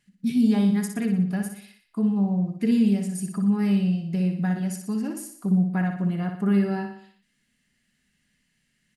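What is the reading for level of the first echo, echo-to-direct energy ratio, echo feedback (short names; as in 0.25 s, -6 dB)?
-6.5 dB, -5.0 dB, 51%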